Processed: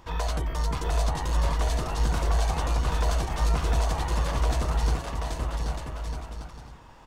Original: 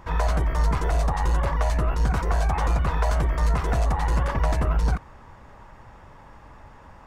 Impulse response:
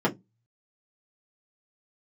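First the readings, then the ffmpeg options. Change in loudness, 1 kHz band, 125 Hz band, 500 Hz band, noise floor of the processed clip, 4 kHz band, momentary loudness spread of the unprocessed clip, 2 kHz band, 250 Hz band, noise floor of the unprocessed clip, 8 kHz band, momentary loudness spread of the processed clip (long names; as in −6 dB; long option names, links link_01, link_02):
−3.5 dB, −3.5 dB, −3.0 dB, −3.0 dB, −48 dBFS, +4.5 dB, 1 LU, −3.5 dB, −3.0 dB, −48 dBFS, +4.0 dB, 9 LU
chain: -filter_complex "[0:a]highshelf=frequency=2500:width_type=q:width=1.5:gain=6.5,aecho=1:1:780|1248|1529|1697|1798:0.631|0.398|0.251|0.158|0.1,asplit=2[link_01][link_02];[1:a]atrim=start_sample=2205[link_03];[link_02][link_03]afir=irnorm=-1:irlink=0,volume=-29.5dB[link_04];[link_01][link_04]amix=inputs=2:normalize=0,volume=-5.5dB"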